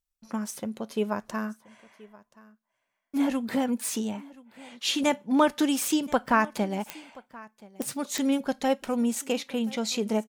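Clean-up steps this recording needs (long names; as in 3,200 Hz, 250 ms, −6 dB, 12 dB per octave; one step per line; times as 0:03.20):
click removal
echo removal 1,027 ms −22 dB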